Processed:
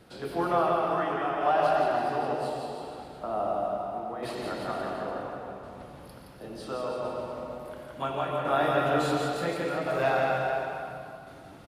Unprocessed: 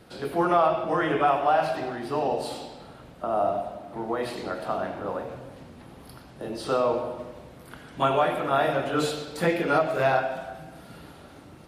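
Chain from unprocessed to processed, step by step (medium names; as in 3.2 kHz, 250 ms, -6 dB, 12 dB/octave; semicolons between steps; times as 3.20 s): tremolo saw down 0.71 Hz, depth 70%; bouncing-ball echo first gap 170 ms, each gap 0.9×, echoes 5; on a send at -4 dB: reverberation RT60 2.2 s, pre-delay 108 ms; on the sum: trim -3 dB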